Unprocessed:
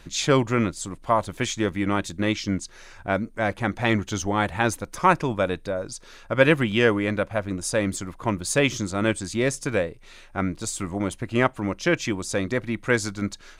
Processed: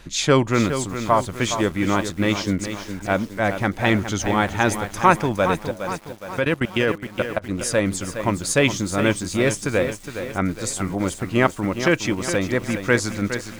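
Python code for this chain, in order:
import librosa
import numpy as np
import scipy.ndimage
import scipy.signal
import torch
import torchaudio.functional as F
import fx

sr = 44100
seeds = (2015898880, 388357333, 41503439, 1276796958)

y = fx.level_steps(x, sr, step_db=22, at=(5.71, 7.49))
y = fx.echo_crushed(y, sr, ms=414, feedback_pct=55, bits=7, wet_db=-9.0)
y = y * librosa.db_to_amplitude(3.0)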